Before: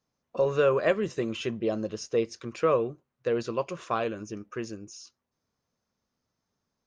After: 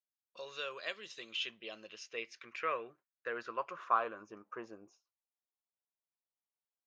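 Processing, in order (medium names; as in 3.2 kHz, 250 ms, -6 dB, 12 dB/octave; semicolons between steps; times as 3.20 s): band-pass sweep 4 kHz -> 830 Hz, 0.94–4.86 s; gate with hold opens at -55 dBFS; trim +2.5 dB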